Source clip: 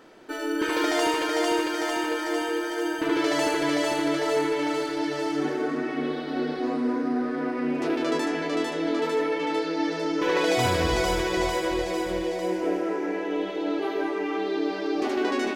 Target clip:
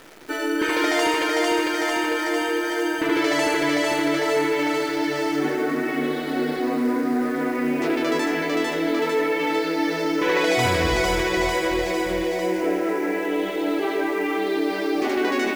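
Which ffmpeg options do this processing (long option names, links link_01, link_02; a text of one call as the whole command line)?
ffmpeg -i in.wav -filter_complex "[0:a]equalizer=frequency=2100:width_type=o:width=0.49:gain=5.5,asplit=2[link_01][link_02];[link_02]alimiter=limit=-21.5dB:level=0:latency=1,volume=-3dB[link_03];[link_01][link_03]amix=inputs=2:normalize=0,acrusher=bits=8:dc=4:mix=0:aa=0.000001" out.wav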